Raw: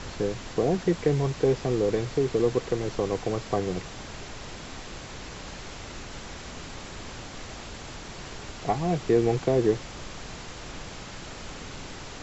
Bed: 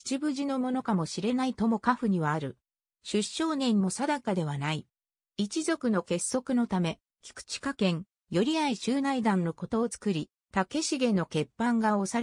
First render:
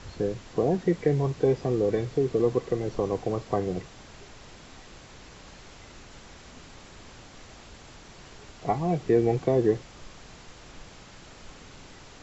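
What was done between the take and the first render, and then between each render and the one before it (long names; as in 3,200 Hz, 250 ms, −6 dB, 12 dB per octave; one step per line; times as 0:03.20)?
noise reduction from a noise print 8 dB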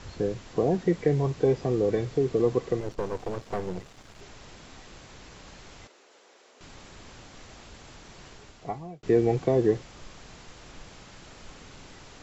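0:02.80–0:04.21: gain on one half-wave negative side −12 dB
0:05.87–0:06.61: four-pole ladder high-pass 350 Hz, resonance 40%
0:08.26–0:09.03: fade out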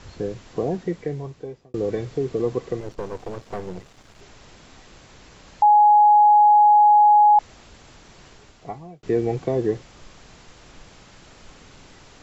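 0:00.63–0:01.74: fade out
0:05.62–0:07.39: beep over 836 Hz −10 dBFS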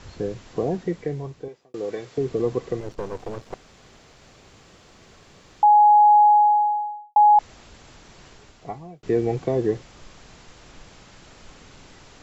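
0:01.48–0:02.18: high-pass filter 580 Hz 6 dB per octave
0:03.54–0:05.63: fill with room tone
0:06.13–0:07.16: fade out and dull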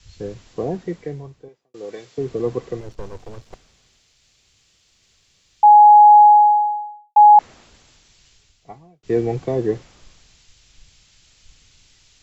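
multiband upward and downward expander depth 70%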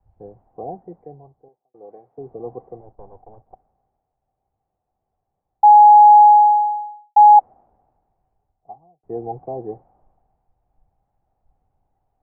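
transistor ladder low-pass 820 Hz, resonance 80%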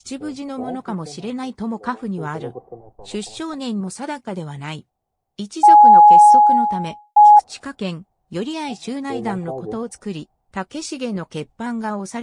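mix in bed +1 dB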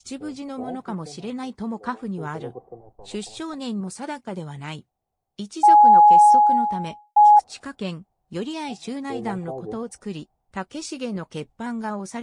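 level −4 dB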